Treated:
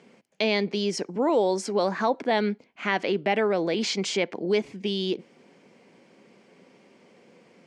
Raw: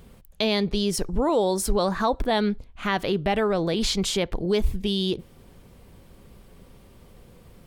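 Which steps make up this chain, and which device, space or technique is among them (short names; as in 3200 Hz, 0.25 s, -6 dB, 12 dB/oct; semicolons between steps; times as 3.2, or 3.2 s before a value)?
television speaker (speaker cabinet 210–6700 Hz, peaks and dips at 1200 Hz -5 dB, 2200 Hz +6 dB, 3700 Hz -7 dB)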